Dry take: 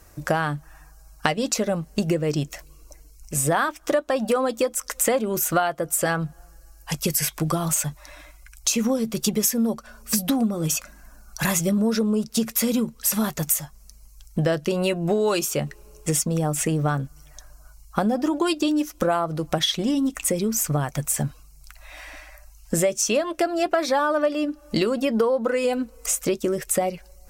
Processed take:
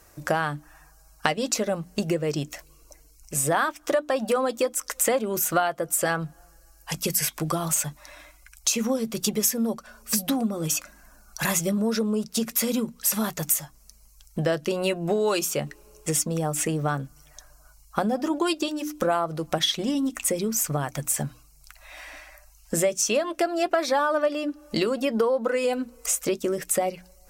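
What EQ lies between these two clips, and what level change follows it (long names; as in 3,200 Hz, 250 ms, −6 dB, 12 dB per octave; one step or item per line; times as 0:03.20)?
low-shelf EQ 160 Hz −7 dB
mains-hum notches 60/120/180/240/300 Hz
−1.0 dB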